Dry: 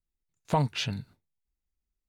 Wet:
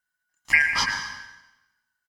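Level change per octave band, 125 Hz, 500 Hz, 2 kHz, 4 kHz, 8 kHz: -16.0, -14.5, +22.0, +7.0, +11.0 dB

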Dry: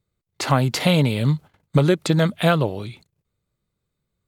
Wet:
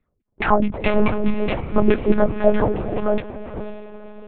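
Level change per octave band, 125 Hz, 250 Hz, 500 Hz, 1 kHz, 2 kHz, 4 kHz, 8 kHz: -8.5 dB, +1.5 dB, +4.0 dB, +3.0 dB, 0.0 dB, -10.5 dB, under -40 dB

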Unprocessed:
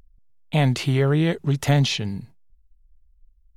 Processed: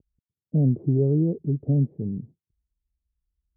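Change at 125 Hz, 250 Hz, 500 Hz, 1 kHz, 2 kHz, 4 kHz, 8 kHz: -1.5 dB, -0.5 dB, -3.5 dB, under -20 dB, under -40 dB, under -40 dB, under -40 dB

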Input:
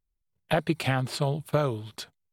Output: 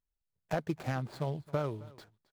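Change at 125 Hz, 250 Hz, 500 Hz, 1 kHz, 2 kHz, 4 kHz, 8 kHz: -7.5, -7.5, -7.5, -8.0, -11.0, -16.0, -14.0 dB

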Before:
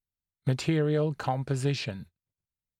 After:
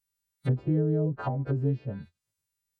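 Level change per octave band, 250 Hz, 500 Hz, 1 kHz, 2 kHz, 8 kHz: +1.0 dB, -2.0 dB, -4.5 dB, -9.5 dB, under -25 dB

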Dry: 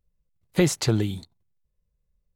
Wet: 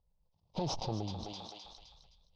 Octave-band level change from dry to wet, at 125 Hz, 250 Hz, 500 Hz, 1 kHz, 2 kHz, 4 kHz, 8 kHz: -14.0, -15.5, -14.5, 0.0, -23.0, -9.0, -17.0 dB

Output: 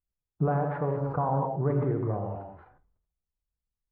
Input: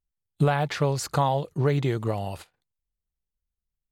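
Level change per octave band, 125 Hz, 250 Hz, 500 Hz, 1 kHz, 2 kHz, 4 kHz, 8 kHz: -3.0 dB, -2.0 dB, -2.5 dB, -3.0 dB, -10.5 dB, under -30 dB, under -40 dB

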